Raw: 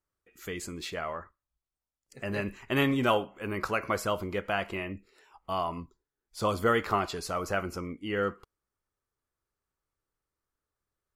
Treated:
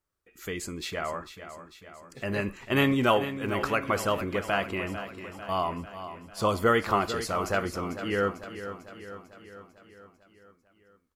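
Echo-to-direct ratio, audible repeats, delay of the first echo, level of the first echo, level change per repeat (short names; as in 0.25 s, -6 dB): -9.5 dB, 5, 0.447 s, -11.5 dB, -4.5 dB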